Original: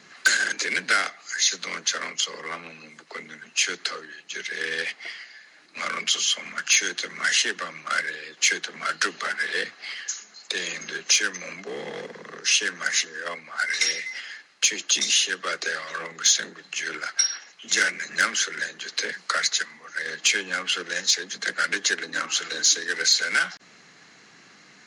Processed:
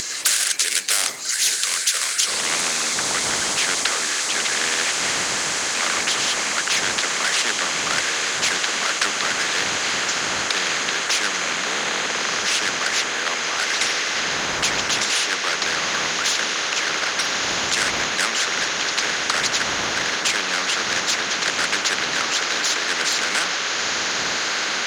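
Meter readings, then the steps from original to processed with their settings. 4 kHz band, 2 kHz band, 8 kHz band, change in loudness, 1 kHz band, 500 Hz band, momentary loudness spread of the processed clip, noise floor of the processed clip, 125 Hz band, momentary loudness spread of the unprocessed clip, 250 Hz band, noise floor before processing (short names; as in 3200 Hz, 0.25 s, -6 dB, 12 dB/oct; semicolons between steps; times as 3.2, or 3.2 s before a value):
+5.0 dB, +4.0 dB, +4.5 dB, +4.5 dB, +8.5 dB, +7.0 dB, 2 LU, -25 dBFS, +11.0 dB, 14 LU, +8.0 dB, -53 dBFS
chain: wind noise 480 Hz -42 dBFS; in parallel at -2 dB: upward compressor, threshold -24 dBFS; on the sum: companded quantiser 6-bit; band-pass sweep 7900 Hz -> 1500 Hz, 2.16–2.66; on a send: diffused feedback echo 1.342 s, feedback 75%, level -12 dB; on the sum: spectral compressor 4:1; gain +3.5 dB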